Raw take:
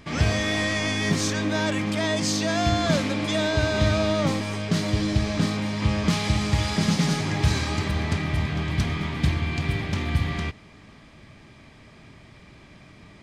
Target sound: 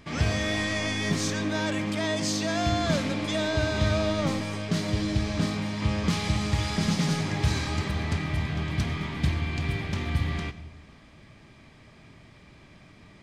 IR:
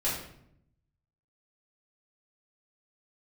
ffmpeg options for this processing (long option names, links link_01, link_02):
-filter_complex "[0:a]asplit=2[link_01][link_02];[1:a]atrim=start_sample=2205,adelay=89[link_03];[link_02][link_03]afir=irnorm=-1:irlink=0,volume=-23dB[link_04];[link_01][link_04]amix=inputs=2:normalize=0,volume=-3.5dB"